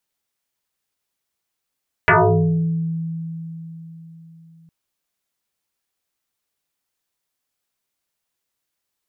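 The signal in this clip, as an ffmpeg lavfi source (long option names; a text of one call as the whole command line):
ffmpeg -f lavfi -i "aevalsrc='0.355*pow(10,-3*t/4.16)*sin(2*PI*164*t+8.7*pow(10,-3*t/0.95)*sin(2*PI*1.63*164*t))':duration=2.61:sample_rate=44100" out.wav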